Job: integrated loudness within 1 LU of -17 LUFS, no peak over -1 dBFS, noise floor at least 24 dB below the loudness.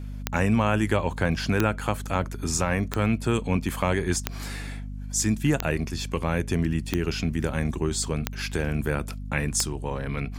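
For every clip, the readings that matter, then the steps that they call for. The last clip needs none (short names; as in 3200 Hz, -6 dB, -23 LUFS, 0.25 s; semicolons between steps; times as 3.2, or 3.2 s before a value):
clicks 8; hum 50 Hz; harmonics up to 250 Hz; hum level -32 dBFS; loudness -26.5 LUFS; peak -6.5 dBFS; loudness target -17.0 LUFS
-> de-click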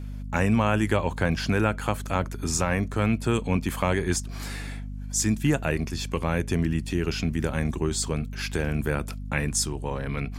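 clicks 0; hum 50 Hz; harmonics up to 250 Hz; hum level -32 dBFS
-> de-hum 50 Hz, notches 5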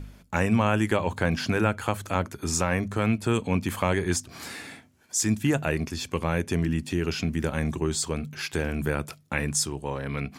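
hum none; loudness -27.0 LUFS; peak -7.5 dBFS; loudness target -17.0 LUFS
-> gain +10 dB; limiter -1 dBFS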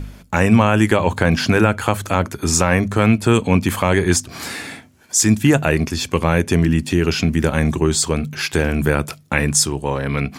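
loudness -17.5 LUFS; peak -1.0 dBFS; noise floor -45 dBFS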